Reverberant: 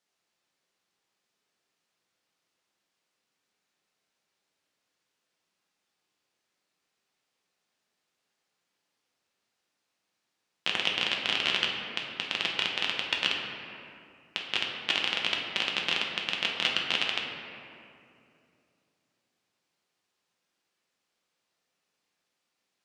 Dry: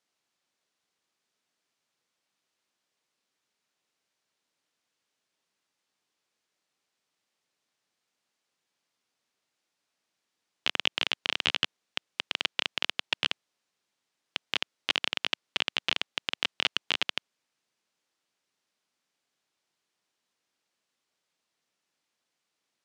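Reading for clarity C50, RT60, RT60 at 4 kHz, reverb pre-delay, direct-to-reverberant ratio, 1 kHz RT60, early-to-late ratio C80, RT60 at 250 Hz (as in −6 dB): 2.5 dB, 2.6 s, 1.4 s, 6 ms, −1.5 dB, 2.4 s, 4.0 dB, 3.0 s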